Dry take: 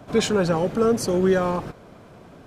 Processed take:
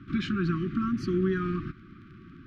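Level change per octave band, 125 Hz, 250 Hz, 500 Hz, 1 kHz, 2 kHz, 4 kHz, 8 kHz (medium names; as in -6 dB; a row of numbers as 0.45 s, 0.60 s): -3.0 dB, -4.0 dB, -13.5 dB, -10.0 dB, -6.0 dB, -11.0 dB, under -20 dB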